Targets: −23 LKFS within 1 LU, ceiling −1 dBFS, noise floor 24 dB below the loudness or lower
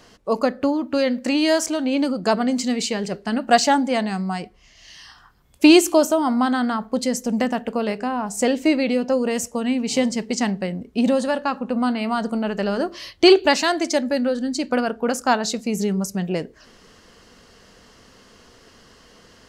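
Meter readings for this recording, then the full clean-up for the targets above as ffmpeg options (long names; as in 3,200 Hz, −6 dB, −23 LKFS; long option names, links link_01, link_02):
integrated loudness −21.0 LKFS; sample peak −1.5 dBFS; target loudness −23.0 LKFS
→ -af "volume=-2dB"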